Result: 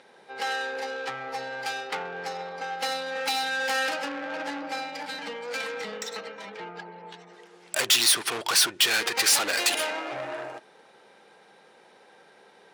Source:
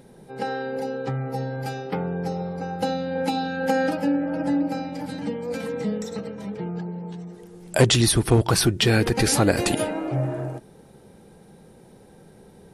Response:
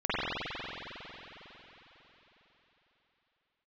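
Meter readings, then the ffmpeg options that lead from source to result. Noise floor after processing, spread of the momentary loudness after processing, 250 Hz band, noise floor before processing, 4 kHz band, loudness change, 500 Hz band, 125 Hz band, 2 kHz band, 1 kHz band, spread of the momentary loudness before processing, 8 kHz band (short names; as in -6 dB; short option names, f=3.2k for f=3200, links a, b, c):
-56 dBFS, 19 LU, -17.5 dB, -50 dBFS, +3.0 dB, -2.0 dB, -8.5 dB, -29.0 dB, +3.0 dB, -2.0 dB, 14 LU, +2.0 dB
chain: -filter_complex "[0:a]adynamicsmooth=sensitivity=8:basefreq=2.8k,asplit=2[a][b];[b]highpass=f=720:p=1,volume=26dB,asoftclip=type=tanh:threshold=-4dB[c];[a][c]amix=inputs=2:normalize=0,lowpass=f=2.2k:p=1,volume=-6dB,aderivative,volume=3.5dB"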